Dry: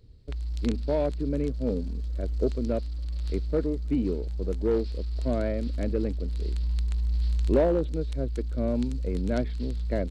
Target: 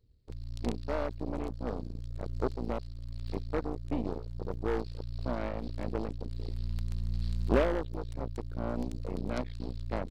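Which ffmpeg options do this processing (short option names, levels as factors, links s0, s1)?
-filter_complex "[0:a]asplit=2[s0][s1];[s1]alimiter=limit=0.0631:level=0:latency=1:release=39,volume=0.794[s2];[s0][s2]amix=inputs=2:normalize=0,aeval=exprs='0.299*(cos(1*acos(clip(val(0)/0.299,-1,1)))-cos(1*PI/2))+0.0841*(cos(3*acos(clip(val(0)/0.299,-1,1)))-cos(3*PI/2))+0.0188*(cos(6*acos(clip(val(0)/0.299,-1,1)))-cos(6*PI/2))':c=same,volume=0.708"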